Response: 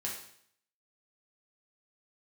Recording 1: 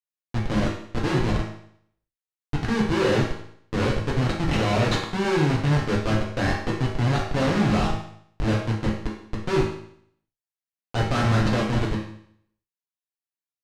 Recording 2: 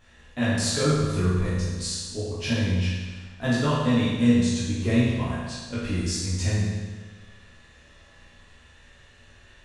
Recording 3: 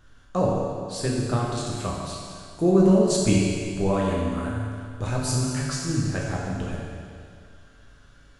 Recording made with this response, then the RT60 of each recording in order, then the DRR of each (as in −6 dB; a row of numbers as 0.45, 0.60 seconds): 1; 0.65, 1.4, 2.2 seconds; −4.0, −10.0, −4.5 decibels